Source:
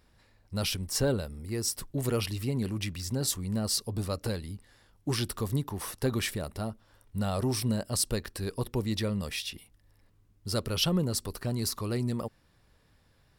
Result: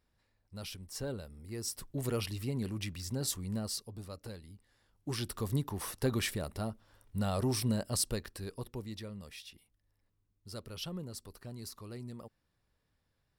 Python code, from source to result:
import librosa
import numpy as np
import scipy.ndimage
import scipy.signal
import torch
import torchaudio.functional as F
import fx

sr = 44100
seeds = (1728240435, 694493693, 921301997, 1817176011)

y = fx.gain(x, sr, db=fx.line((0.87, -13.0), (2.0, -5.0), (3.54, -5.0), (3.95, -13.0), (4.54, -13.0), (5.57, -2.5), (7.9, -2.5), (9.08, -14.0)))